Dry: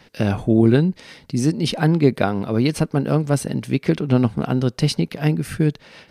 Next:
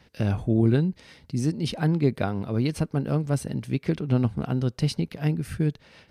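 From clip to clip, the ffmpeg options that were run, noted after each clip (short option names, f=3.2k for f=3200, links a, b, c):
-af "equalizer=f=68:t=o:w=1.7:g=10,volume=-8.5dB"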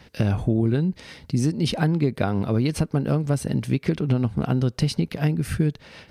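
-af "acompressor=threshold=-25dB:ratio=6,volume=7.5dB"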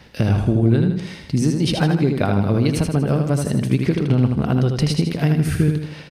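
-af "aecho=1:1:79|158|237|316|395|474:0.562|0.264|0.124|0.0584|0.0274|0.0129,volume=3dB"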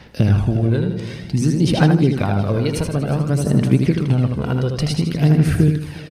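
-af "aecho=1:1:360|720|1080|1440:0.178|0.0747|0.0314|0.0132,aphaser=in_gain=1:out_gain=1:delay=2.1:decay=0.43:speed=0.55:type=sinusoidal,volume=-1dB"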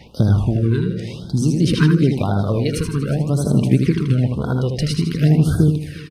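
-af "afftfilt=real='re*(1-between(b*sr/1024,640*pow(2300/640,0.5+0.5*sin(2*PI*0.94*pts/sr))/1.41,640*pow(2300/640,0.5+0.5*sin(2*PI*0.94*pts/sr))*1.41))':imag='im*(1-between(b*sr/1024,640*pow(2300/640,0.5+0.5*sin(2*PI*0.94*pts/sr))/1.41,640*pow(2300/640,0.5+0.5*sin(2*PI*0.94*pts/sr))*1.41))':win_size=1024:overlap=0.75"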